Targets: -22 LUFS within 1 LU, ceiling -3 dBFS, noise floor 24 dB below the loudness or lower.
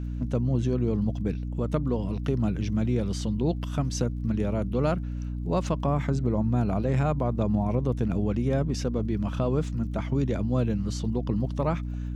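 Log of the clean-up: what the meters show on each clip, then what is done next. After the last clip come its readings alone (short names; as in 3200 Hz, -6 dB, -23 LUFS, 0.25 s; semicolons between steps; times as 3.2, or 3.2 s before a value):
ticks 18/s; hum 60 Hz; harmonics up to 300 Hz; hum level -29 dBFS; loudness -27.5 LUFS; peak -14.0 dBFS; loudness target -22.0 LUFS
-> de-click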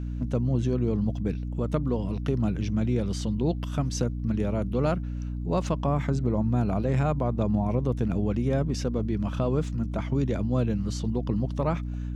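ticks 0.082/s; hum 60 Hz; harmonics up to 300 Hz; hum level -29 dBFS
-> notches 60/120/180/240/300 Hz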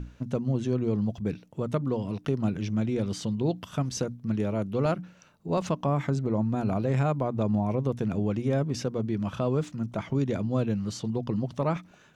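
hum none; loudness -29.0 LUFS; peak -15.5 dBFS; loudness target -22.0 LUFS
-> gain +7 dB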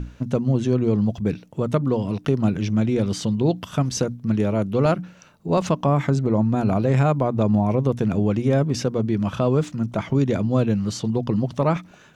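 loudness -22.0 LUFS; peak -8.5 dBFS; noise floor -50 dBFS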